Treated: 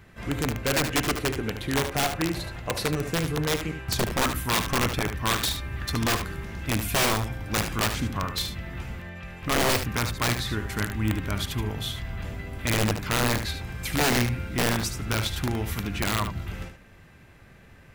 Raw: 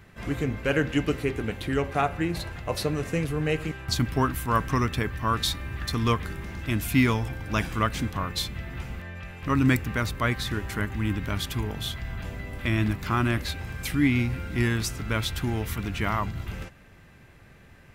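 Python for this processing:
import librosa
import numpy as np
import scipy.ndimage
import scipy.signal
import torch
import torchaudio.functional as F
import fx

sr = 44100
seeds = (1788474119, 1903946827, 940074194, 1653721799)

y = (np.mod(10.0 ** (17.5 / 20.0) * x + 1.0, 2.0) - 1.0) / 10.0 ** (17.5 / 20.0)
y = y + 10.0 ** (-8.5 / 20.0) * np.pad(y, (int(74 * sr / 1000.0), 0))[:len(y)]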